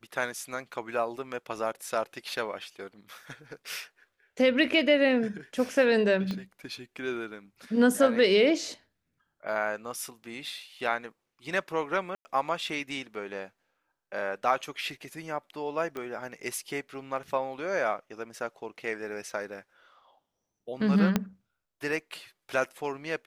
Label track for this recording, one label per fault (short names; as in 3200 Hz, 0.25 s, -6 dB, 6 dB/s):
6.310000	6.310000	pop -21 dBFS
12.150000	12.250000	gap 0.1 s
15.970000	15.970000	pop -23 dBFS
21.160000	21.160000	pop -10 dBFS